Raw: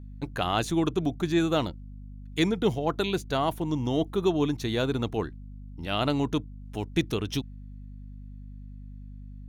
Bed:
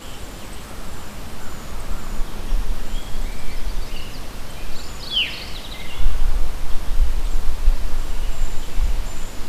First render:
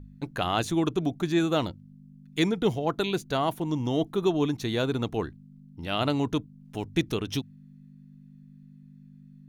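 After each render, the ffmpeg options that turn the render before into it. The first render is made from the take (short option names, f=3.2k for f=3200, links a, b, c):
-af "bandreject=f=50:t=h:w=4,bandreject=f=100:t=h:w=4"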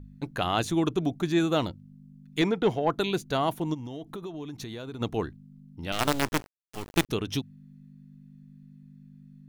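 -filter_complex "[0:a]asettb=1/sr,asplit=3[a][b][c];[a]atrim=end=2.414[d];[b]atrim=start=2.41:end=2.9,asetpts=PTS-STARTPTS,afade=t=in:d=0.004:c=qsin,afade=t=out:st=0.486:d=0.004:c=qsin,asplit=2[e][f];[f]highpass=f=720:p=1,volume=13dB,asoftclip=type=tanh:threshold=-11dB[g];[e][g]amix=inputs=2:normalize=0,lowpass=f=1.4k:p=1,volume=-6dB[h];[c]atrim=start=2.896[i];[d][h]acrossfade=d=0.004:c1=hsin:c2=qsin[j];[j][i]acrossfade=d=0.004:c1=qsin:c2=hsin,asplit=3[k][l][m];[k]afade=t=out:st=3.73:d=0.02[n];[l]acompressor=threshold=-34dB:ratio=8:attack=3.2:release=140:knee=1:detection=peak,afade=t=in:st=3.73:d=0.02,afade=t=out:st=5:d=0.02[o];[m]afade=t=in:st=5:d=0.02[p];[n][o][p]amix=inputs=3:normalize=0,asettb=1/sr,asplit=3[q][r][s];[q]atrim=end=5.924[t];[r]atrim=start=5.92:end=7.09,asetpts=PTS-STARTPTS,afade=t=in:d=0.004:c=qsin,afade=t=out:st=1.166:d=0.004:c=qsin,acrusher=bits=4:dc=4:mix=0:aa=0.000001[u];[s]atrim=start=7.086[v];[t][u]acrossfade=d=0.004:c1=hsin:c2=qsin[w];[w][v]acrossfade=d=0.004:c1=qsin:c2=hsin"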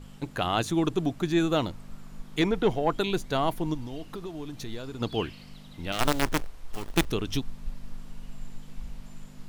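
-filter_complex "[1:a]volume=-19.5dB[a];[0:a][a]amix=inputs=2:normalize=0"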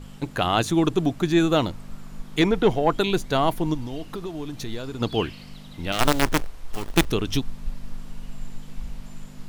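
-af "volume=5dB"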